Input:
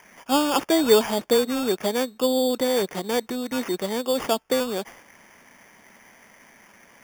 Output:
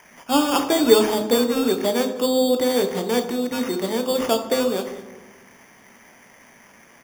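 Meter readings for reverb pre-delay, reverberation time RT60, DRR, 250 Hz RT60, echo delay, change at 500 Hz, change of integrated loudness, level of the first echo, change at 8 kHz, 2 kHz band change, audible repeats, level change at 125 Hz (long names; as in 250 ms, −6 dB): 13 ms, 1.1 s, 6.0 dB, 1.6 s, 206 ms, +2.5 dB, +2.5 dB, −19.5 dB, +2.0 dB, +1.5 dB, 1, +3.5 dB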